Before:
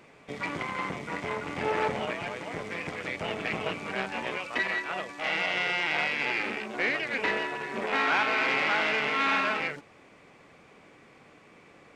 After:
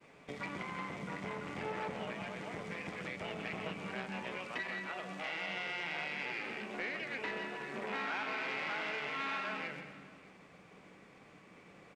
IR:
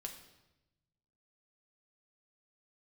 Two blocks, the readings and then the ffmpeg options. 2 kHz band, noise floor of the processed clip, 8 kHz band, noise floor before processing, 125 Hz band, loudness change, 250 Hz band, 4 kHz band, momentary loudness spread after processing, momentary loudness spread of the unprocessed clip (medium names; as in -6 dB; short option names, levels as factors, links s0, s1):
-11.0 dB, -59 dBFS, -10.0 dB, -56 dBFS, -5.5 dB, -10.5 dB, -7.5 dB, -10.5 dB, 21 LU, 10 LU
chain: -filter_complex "[0:a]agate=range=0.0224:threshold=0.00251:ratio=3:detection=peak,asplit=2[s0][s1];[s1]equalizer=f=190:t=o:w=0.73:g=13[s2];[1:a]atrim=start_sample=2205,adelay=126[s3];[s2][s3]afir=irnorm=-1:irlink=0,volume=0.447[s4];[s0][s4]amix=inputs=2:normalize=0,acompressor=threshold=0.00891:ratio=2,aecho=1:1:602:0.0841,volume=0.75"